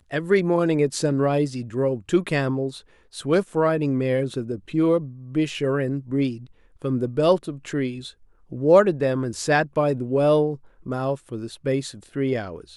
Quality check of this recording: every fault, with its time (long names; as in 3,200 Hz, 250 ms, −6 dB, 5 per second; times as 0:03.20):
nothing to report